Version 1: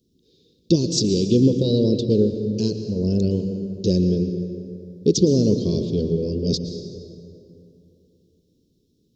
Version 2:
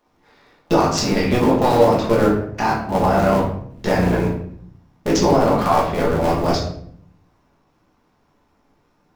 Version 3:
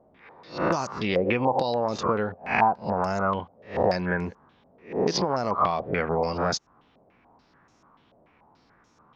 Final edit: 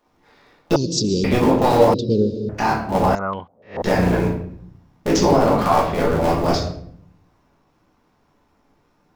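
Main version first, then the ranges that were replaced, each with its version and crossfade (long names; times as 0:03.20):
2
0:00.76–0:01.24: punch in from 1
0:01.94–0:02.49: punch in from 1
0:03.15–0:03.82: punch in from 3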